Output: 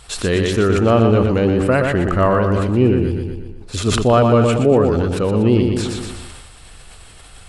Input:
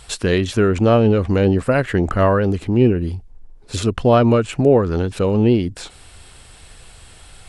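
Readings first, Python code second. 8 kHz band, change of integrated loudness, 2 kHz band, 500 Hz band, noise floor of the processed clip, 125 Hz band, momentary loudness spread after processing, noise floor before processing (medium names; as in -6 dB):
+4.0 dB, +1.0 dB, +2.0 dB, +1.0 dB, -41 dBFS, +1.5 dB, 12 LU, -45 dBFS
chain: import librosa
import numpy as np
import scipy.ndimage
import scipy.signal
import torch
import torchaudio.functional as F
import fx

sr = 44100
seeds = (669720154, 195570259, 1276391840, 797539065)

y = fx.peak_eq(x, sr, hz=1200.0, db=4.0, octaves=0.24)
y = fx.echo_feedback(y, sr, ms=120, feedback_pct=49, wet_db=-6.0)
y = fx.sustainer(y, sr, db_per_s=30.0)
y = y * 10.0 ** (-1.0 / 20.0)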